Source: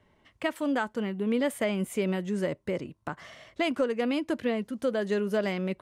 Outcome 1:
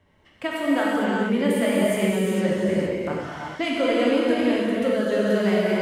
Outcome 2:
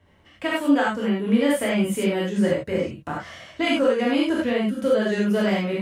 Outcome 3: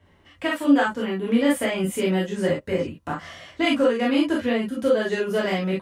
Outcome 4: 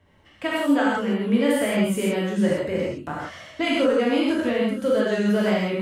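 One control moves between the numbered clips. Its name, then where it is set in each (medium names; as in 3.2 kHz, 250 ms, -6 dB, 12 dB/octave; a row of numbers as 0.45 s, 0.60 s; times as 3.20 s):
gated-style reverb, gate: 480 ms, 120 ms, 80 ms, 190 ms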